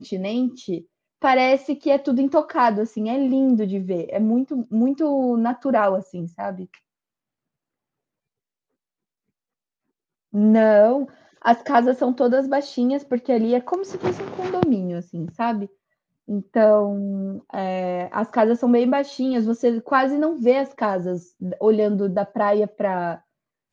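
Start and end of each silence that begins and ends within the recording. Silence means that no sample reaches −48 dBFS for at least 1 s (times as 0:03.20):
0:06.78–0:10.33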